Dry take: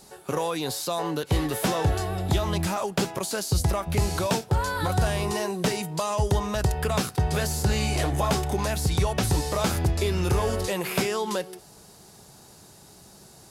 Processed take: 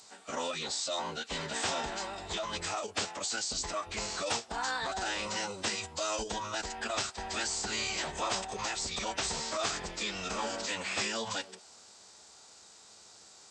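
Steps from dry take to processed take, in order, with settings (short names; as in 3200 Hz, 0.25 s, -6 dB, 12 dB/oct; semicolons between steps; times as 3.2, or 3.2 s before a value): HPF 1400 Hz 6 dB/oct; formant-preserving pitch shift -11.5 st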